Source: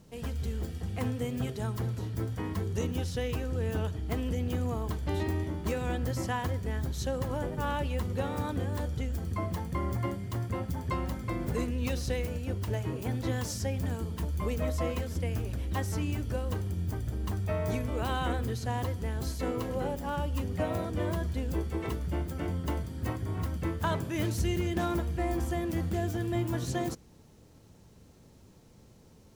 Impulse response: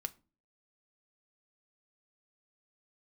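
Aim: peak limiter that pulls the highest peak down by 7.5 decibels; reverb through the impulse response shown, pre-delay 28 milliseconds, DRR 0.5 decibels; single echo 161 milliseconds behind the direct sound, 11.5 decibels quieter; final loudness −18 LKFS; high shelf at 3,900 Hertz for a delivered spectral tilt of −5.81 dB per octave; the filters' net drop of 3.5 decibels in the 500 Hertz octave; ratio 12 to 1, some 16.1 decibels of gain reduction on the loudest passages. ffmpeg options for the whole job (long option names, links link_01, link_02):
-filter_complex "[0:a]equalizer=frequency=500:width_type=o:gain=-4.5,highshelf=frequency=3900:gain=3.5,acompressor=threshold=-42dB:ratio=12,alimiter=level_in=15.5dB:limit=-24dB:level=0:latency=1,volume=-15.5dB,aecho=1:1:161:0.266,asplit=2[link_01][link_02];[1:a]atrim=start_sample=2205,adelay=28[link_03];[link_02][link_03]afir=irnorm=-1:irlink=0,volume=1dB[link_04];[link_01][link_04]amix=inputs=2:normalize=0,volume=28dB"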